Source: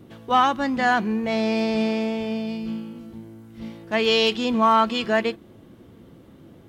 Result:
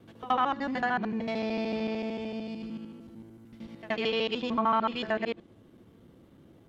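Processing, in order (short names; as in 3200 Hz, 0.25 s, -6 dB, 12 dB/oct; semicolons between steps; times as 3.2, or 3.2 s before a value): local time reversal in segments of 75 ms; treble ducked by the level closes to 3000 Hz, closed at -16 dBFS; pre-echo 75 ms -16 dB; gain -8 dB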